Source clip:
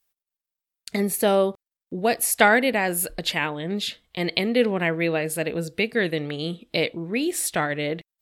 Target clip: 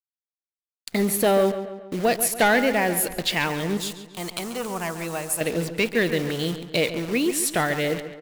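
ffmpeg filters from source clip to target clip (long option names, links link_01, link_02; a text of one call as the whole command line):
ffmpeg -i in.wav -filter_complex "[0:a]asettb=1/sr,asplit=3[link_01][link_02][link_03];[link_01]atrim=end=2.284[link_04];[link_02]atrim=start=2.28:end=2.97,asetpts=PTS-STARTPTS,afade=type=in:duration=0.004:curve=qsin,afade=type=out:start_time=0.686:duration=0.004:curve=qsin,highshelf=frequency=4800:gain=-9.5[link_05];[link_03]atrim=start=2.966[link_06];[link_04][link_05]acrossfade=duration=0.004:curve1=hsin:curve2=qsin[link_07];[link_07][link_06]acrossfade=duration=0.004:curve1=qsin:curve2=hsin,acrusher=bits=7:dc=4:mix=0:aa=0.000001,asoftclip=type=tanh:threshold=-15dB,asettb=1/sr,asplit=3[link_08][link_09][link_10];[link_08]atrim=end=3.774[link_11];[link_09]atrim=start=3.77:end=5.41,asetpts=PTS-STARTPTS,afade=type=in:duration=0.004:curve=qsin,afade=type=out:start_time=1.636:duration=0.004:curve=qsin,equalizer=frequency=125:width_type=o:width=1:gain=-6,equalizer=frequency=250:width_type=o:width=1:gain=-9,equalizer=frequency=500:width_type=o:width=1:gain=-10,equalizer=frequency=1000:width_type=o:width=1:gain=7,equalizer=frequency=2000:width_type=o:width=1:gain=-11,equalizer=frequency=4000:width_type=o:width=1:gain=-6,equalizer=frequency=8000:width_type=o:width=1:gain=6[link_12];[link_10]atrim=start=5.406[link_13];[link_11][link_12]acrossfade=duration=0.004:curve1=hsin:curve2=qsin[link_14];[link_14][link_13]acrossfade=duration=0.004:curve1=qsin:curve2=hsin,asplit=2[link_15][link_16];[link_16]adelay=139,lowpass=frequency=4000:poles=1,volume=-11dB,asplit=2[link_17][link_18];[link_18]adelay=139,lowpass=frequency=4000:poles=1,volume=0.5,asplit=2[link_19][link_20];[link_20]adelay=139,lowpass=frequency=4000:poles=1,volume=0.5,asplit=2[link_21][link_22];[link_22]adelay=139,lowpass=frequency=4000:poles=1,volume=0.5,asplit=2[link_23][link_24];[link_24]adelay=139,lowpass=frequency=4000:poles=1,volume=0.5[link_25];[link_15][link_17][link_19][link_21][link_23][link_25]amix=inputs=6:normalize=0,volume=2.5dB" out.wav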